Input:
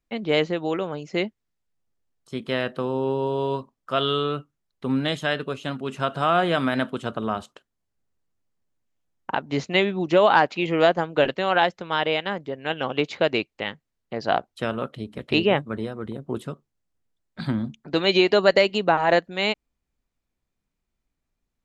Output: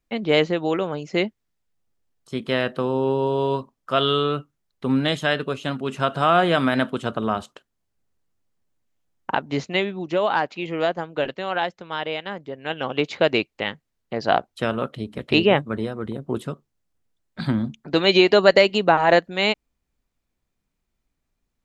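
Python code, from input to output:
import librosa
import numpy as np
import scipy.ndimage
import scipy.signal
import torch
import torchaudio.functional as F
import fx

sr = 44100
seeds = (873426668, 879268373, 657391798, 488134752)

y = fx.gain(x, sr, db=fx.line((9.33, 3.0), (10.0, -4.5), (12.18, -4.5), (13.3, 3.0)))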